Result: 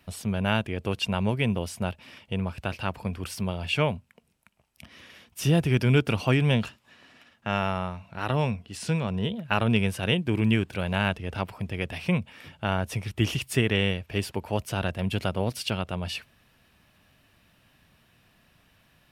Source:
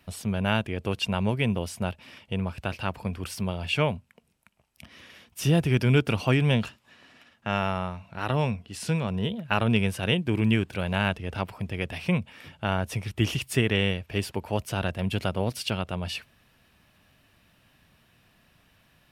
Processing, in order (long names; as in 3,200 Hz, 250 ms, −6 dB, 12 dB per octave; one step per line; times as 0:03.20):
0:08.77–0:09.35: parametric band 12,000 Hz −9.5 dB 0.25 octaves